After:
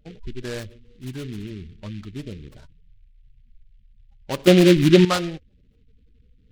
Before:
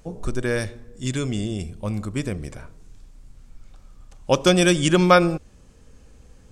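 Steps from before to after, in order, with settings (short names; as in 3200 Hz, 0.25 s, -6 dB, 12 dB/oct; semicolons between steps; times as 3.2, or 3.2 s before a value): notch 520 Hz, Q 13; spectral gate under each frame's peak -20 dB strong; 4.47–5.05 resonant low shelf 780 Hz +11 dB, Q 1.5; noise-modulated delay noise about 2600 Hz, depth 0.093 ms; gain -7 dB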